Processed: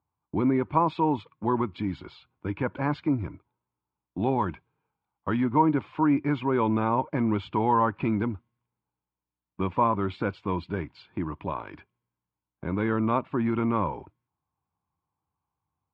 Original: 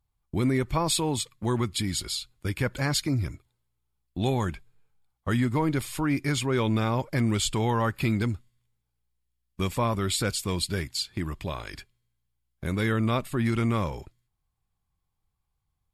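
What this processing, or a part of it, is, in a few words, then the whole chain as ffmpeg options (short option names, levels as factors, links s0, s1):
bass cabinet: -filter_complex "[0:a]highpass=f=88:w=0.5412,highpass=f=88:w=1.3066,equalizer=f=120:t=q:w=4:g=-7,equalizer=f=300:t=q:w=4:g=5,equalizer=f=950:t=q:w=4:g=10,equalizer=f=1900:t=q:w=4:g=-9,lowpass=f=2300:w=0.5412,lowpass=f=2300:w=1.3066,asettb=1/sr,asplit=3[s0][s1][s2];[s0]atrim=end=4.384[s3];[s1]atrim=start=4.38:end=5.44,asetpts=PTS-STARTPTS,afade=t=in:d=0.004:c=qsin,afade=t=out:st=1.056:d=0.004:c=qsin,aemphasis=mode=production:type=75fm[s4];[s2]atrim=start=5.436[s5];[s3][s4]acrossfade=d=0.004:c1=hsin:c2=qsin[s6];[s6][s5]acrossfade=d=0.004:c1=qsin:c2=hsin"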